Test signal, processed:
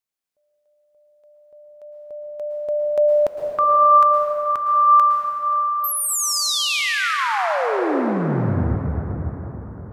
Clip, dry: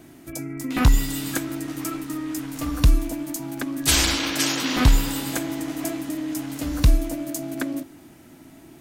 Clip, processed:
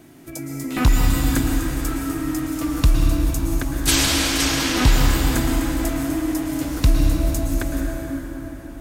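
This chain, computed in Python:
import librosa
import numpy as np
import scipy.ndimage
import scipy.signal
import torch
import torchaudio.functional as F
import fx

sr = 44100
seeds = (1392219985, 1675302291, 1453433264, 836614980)

y = fx.rev_plate(x, sr, seeds[0], rt60_s=4.8, hf_ratio=0.5, predelay_ms=100, drr_db=-0.5)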